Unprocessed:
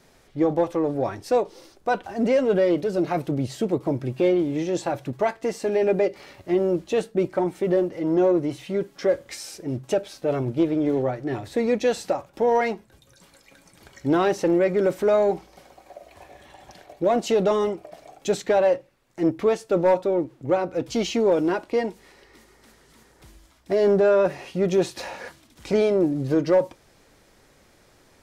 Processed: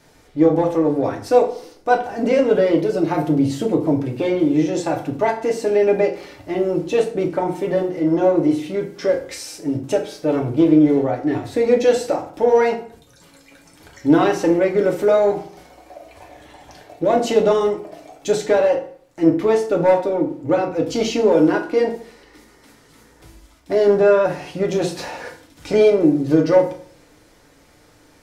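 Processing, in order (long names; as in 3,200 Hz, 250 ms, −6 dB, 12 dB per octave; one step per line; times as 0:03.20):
feedback delay network reverb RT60 0.51 s, low-frequency decay 1.1×, high-frequency decay 0.75×, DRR 1 dB
level +2 dB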